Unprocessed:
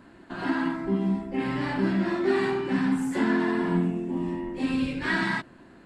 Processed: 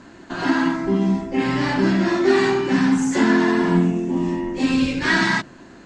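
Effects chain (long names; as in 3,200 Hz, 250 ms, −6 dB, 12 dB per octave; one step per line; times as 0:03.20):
low-pass with resonance 6,400 Hz, resonance Q 4.5
mains-hum notches 50/100/150/200 Hz
level +7.5 dB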